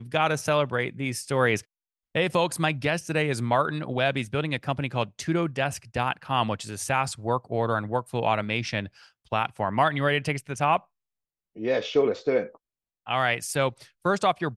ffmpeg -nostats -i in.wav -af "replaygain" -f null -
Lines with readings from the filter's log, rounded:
track_gain = +6.4 dB
track_peak = 0.239